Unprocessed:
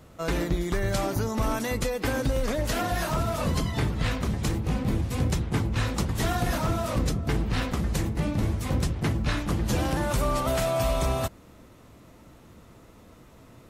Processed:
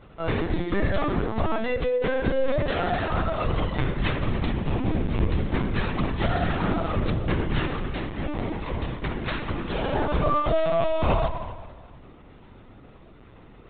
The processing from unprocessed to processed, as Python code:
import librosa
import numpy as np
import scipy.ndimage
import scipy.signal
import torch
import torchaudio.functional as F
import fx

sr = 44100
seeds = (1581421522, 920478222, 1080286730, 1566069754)

y = fx.low_shelf(x, sr, hz=240.0, db=-8.0, at=(7.67, 9.93), fade=0.02)
y = fx.rev_spring(y, sr, rt60_s=1.5, pass_ms=(30,), chirp_ms=30, drr_db=4.0)
y = fx.lpc_vocoder(y, sr, seeds[0], excitation='pitch_kept', order=16)
y = F.gain(torch.from_numpy(y), 1.0).numpy()